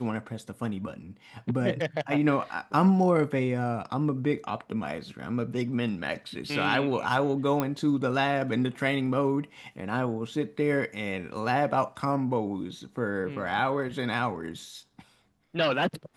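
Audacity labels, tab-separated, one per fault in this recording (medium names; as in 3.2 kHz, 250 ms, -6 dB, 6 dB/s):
7.600000	7.600000	pop -13 dBFS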